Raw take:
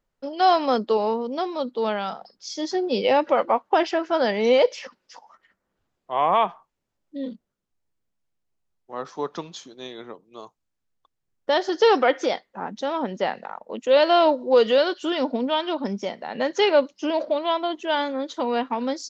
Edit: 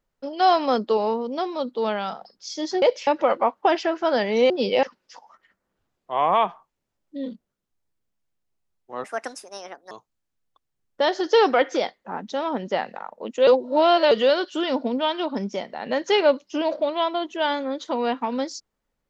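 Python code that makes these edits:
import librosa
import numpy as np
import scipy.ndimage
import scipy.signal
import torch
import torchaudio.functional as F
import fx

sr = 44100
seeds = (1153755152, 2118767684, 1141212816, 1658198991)

y = fx.edit(x, sr, fx.swap(start_s=2.82, length_s=0.33, other_s=4.58, other_length_s=0.25),
    fx.speed_span(start_s=9.04, length_s=1.36, speed=1.56),
    fx.reverse_span(start_s=13.96, length_s=0.64), tone=tone)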